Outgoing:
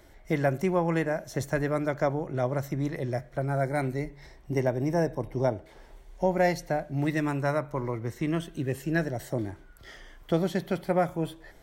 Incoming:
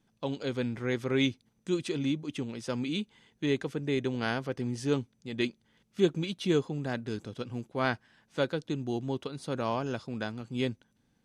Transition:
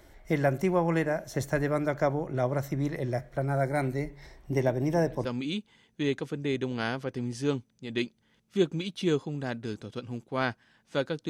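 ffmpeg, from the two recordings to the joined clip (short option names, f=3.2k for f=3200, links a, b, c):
-filter_complex "[1:a]asplit=2[a][b];[0:a]apad=whole_dur=11.29,atrim=end=11.29,atrim=end=5.252[c];[b]atrim=start=2.678:end=8.72[d];[a]atrim=start=1.97:end=2.68,asetpts=PTS-STARTPTS,volume=-14.5dB,afade=t=in:d=0.004:c=hsin,afade=t=out:st=0.706:d=0.004:c=hsin,adelay=4540[e];[c][d]acrossfade=d=0.004:c1=hsin:c2=hsin[f];[f][e]amix=inputs=2:normalize=0"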